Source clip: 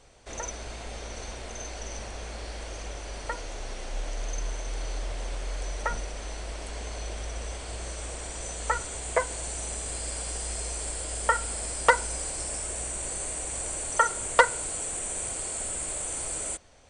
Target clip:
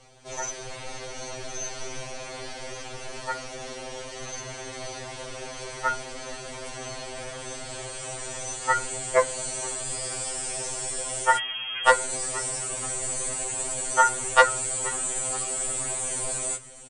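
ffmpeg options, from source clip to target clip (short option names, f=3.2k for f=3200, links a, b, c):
-filter_complex "[0:a]asplit=5[a][b][c][d][e];[b]adelay=475,afreqshift=-72,volume=-18dB[f];[c]adelay=950,afreqshift=-144,volume=-24.2dB[g];[d]adelay=1425,afreqshift=-216,volume=-30.4dB[h];[e]adelay=1900,afreqshift=-288,volume=-36.6dB[i];[a][f][g][h][i]amix=inputs=5:normalize=0,asettb=1/sr,asplit=3[j][k][l];[j]atrim=end=11.374[m];[k]atrim=start=11.37:end=11.87,asetpts=PTS-STARTPTS,afade=t=in:d=0.004:c=qsin,afade=t=out:st=0.496:d=0.004:c=qsin,lowpass=f=2.8k:t=q:w=0.5098,lowpass=f=2.8k:t=q:w=0.6013,lowpass=f=2.8k:t=q:w=0.9,lowpass=f=2.8k:t=q:w=2.563,afreqshift=-3300[n];[l]atrim=start=11.866[o];[m][n]acrossfade=d=0.004:c1=hsin:c2=qsin[p];[p][o]acrossfade=d=0.004:c1=qsin:c2=hsin,afftfilt=real='re*2.45*eq(mod(b,6),0)':imag='im*2.45*eq(mod(b,6),0)':win_size=2048:overlap=0.75,volume=5.5dB"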